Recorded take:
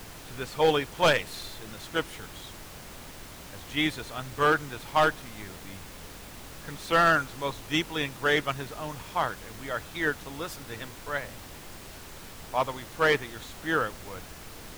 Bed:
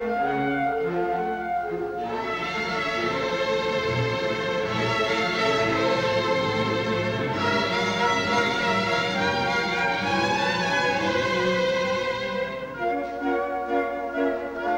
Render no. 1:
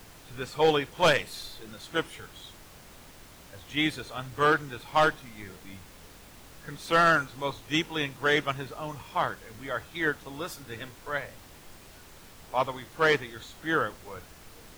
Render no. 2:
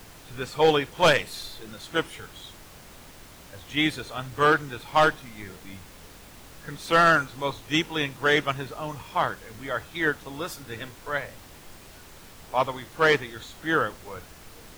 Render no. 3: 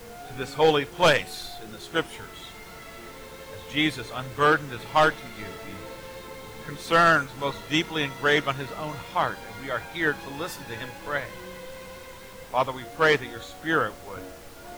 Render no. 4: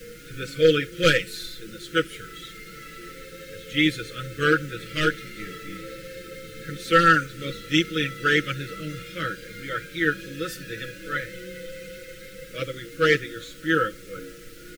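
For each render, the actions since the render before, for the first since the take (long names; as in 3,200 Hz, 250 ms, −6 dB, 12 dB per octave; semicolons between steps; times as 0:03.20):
noise reduction from a noise print 6 dB
level +3 dB
mix in bed −18.5 dB
Chebyshev band-stop filter 550–1,300 Hz, order 4; comb filter 6.1 ms, depth 75%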